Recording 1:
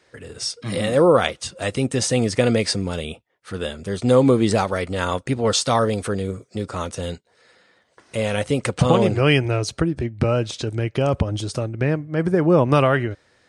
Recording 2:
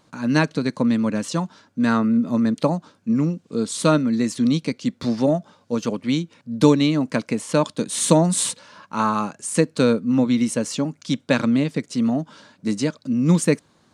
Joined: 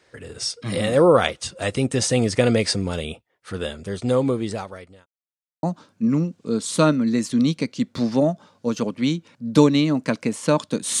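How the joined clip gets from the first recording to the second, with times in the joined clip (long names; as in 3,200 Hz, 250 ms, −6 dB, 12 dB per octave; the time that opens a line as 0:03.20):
recording 1
0:03.49–0:05.06: fade out linear
0:05.06–0:05.63: silence
0:05.63: continue with recording 2 from 0:02.69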